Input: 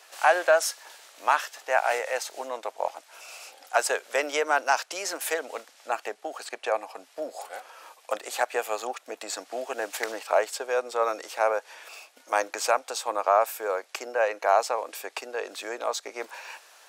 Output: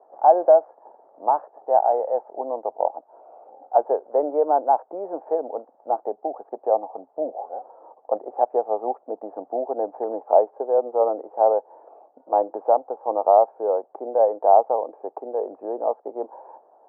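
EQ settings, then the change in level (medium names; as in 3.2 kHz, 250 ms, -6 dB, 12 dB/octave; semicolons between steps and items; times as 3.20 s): elliptic low-pass 830 Hz, stop band 80 dB; +8.0 dB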